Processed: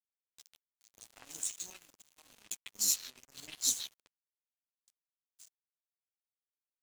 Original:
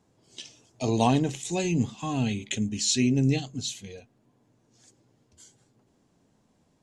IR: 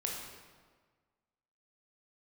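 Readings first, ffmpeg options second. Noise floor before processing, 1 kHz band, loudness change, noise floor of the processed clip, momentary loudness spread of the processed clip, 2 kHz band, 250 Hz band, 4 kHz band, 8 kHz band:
-68 dBFS, -30.0 dB, -7.5 dB, under -85 dBFS, 19 LU, -16.5 dB, -35.5 dB, -7.5 dB, -1.0 dB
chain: -filter_complex "[0:a]dynaudnorm=f=610:g=5:m=8dB,flanger=delay=9.5:depth=1.9:regen=-5:speed=1.2:shape=triangular,equalizer=f=270:w=0.88:g=6,aeval=exprs='0.501*(cos(1*acos(clip(val(0)/0.501,-1,1)))-cos(1*PI/2))+0.00891*(cos(3*acos(clip(val(0)/0.501,-1,1)))-cos(3*PI/2))+0.0708*(cos(4*acos(clip(val(0)/0.501,-1,1)))-cos(4*PI/2))+0.0141*(cos(7*acos(clip(val(0)/0.501,-1,1)))-cos(7*PI/2))':c=same,areverse,acompressor=threshold=-26dB:ratio=5,areverse,aderivative,acrossover=split=710|3800[a][b][c];[a]adelay=110[d];[b]adelay=150[e];[d][e][c]amix=inputs=3:normalize=0,aeval=exprs='sgn(val(0))*max(abs(val(0))-0.00376,0)':c=same,volume=8dB"

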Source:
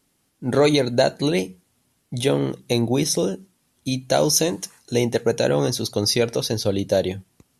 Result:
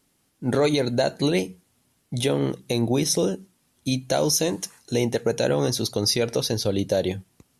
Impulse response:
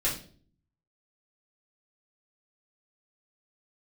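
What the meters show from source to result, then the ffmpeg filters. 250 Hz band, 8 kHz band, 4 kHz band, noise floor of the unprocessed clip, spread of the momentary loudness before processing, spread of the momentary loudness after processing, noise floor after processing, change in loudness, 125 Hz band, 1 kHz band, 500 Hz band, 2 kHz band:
-1.5 dB, -2.0 dB, -2.0 dB, -68 dBFS, 12 LU, 9 LU, -68 dBFS, -2.5 dB, -1.5 dB, -3.5 dB, -3.0 dB, -3.0 dB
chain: -af "alimiter=limit=-11dB:level=0:latency=1:release=124"

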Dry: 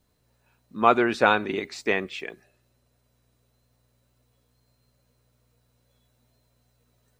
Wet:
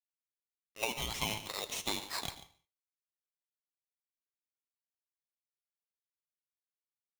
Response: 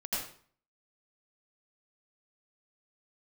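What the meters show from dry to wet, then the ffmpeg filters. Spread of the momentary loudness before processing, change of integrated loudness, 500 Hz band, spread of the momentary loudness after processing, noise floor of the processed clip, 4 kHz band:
17 LU, -13.0 dB, -20.0 dB, 5 LU, under -85 dBFS, -1.0 dB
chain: -filter_complex "[0:a]highpass=f=690:w=0.5412,highpass=f=690:w=1.3066,alimiter=limit=-12dB:level=0:latency=1:release=185,acompressor=threshold=-34dB:ratio=6,acrusher=bits=7:mix=0:aa=0.5,flanger=delay=8.3:depth=3:regen=81:speed=1.9:shape=sinusoidal,aecho=1:1:142:0.168,asplit=2[a][b];[1:a]atrim=start_sample=2205,afade=t=out:st=0.27:d=0.01,atrim=end_sample=12348[c];[b][c]afir=irnorm=-1:irlink=0,volume=-18dB[d];[a][d]amix=inputs=2:normalize=0,aeval=exprs='val(0)*sgn(sin(2*PI*1600*n/s))':c=same,volume=5dB"

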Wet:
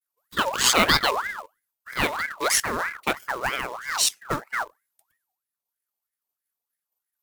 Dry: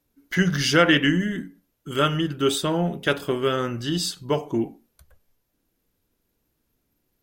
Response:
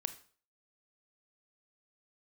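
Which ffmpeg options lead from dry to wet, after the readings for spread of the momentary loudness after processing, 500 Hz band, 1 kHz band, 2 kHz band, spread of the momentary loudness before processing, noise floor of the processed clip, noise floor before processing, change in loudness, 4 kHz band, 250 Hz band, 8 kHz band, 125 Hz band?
13 LU, -6.5 dB, +3.0 dB, +1.0 dB, 11 LU, under -85 dBFS, -74 dBFS, -0.5 dB, +1.5 dB, -11.5 dB, +8.5 dB, -13.0 dB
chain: -af "crystalizer=i=4.5:c=0,agate=range=-33dB:threshold=-57dB:ratio=3:detection=peak,afwtdn=0.0794,acrusher=bits=3:mode=log:mix=0:aa=0.000001,aeval=exprs='val(0)*sin(2*PI*1300*n/s+1300*0.45/3.1*sin(2*PI*3.1*n/s))':c=same,volume=-2dB"

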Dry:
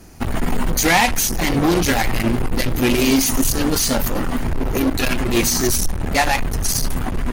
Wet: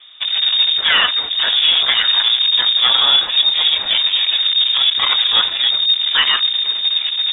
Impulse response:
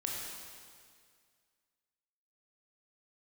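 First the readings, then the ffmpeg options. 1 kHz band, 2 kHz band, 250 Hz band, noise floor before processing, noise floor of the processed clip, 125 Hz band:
-3.5 dB, +2.0 dB, under -25 dB, -23 dBFS, -24 dBFS, under -25 dB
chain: -af "lowpass=f=3.1k:t=q:w=0.5098,lowpass=f=3.1k:t=q:w=0.6013,lowpass=f=3.1k:t=q:w=0.9,lowpass=f=3.1k:t=q:w=2.563,afreqshift=-3700,dynaudnorm=f=530:g=5:m=4dB,volume=1dB"

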